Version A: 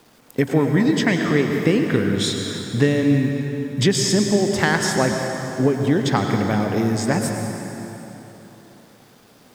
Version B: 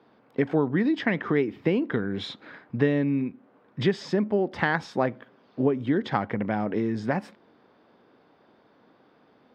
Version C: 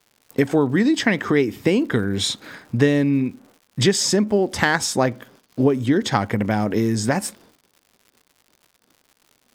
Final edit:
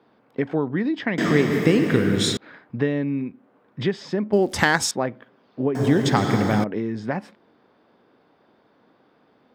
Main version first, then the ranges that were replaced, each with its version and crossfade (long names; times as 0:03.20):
B
0:01.18–0:02.37: punch in from A
0:04.33–0:04.91: punch in from C
0:05.75–0:06.64: punch in from A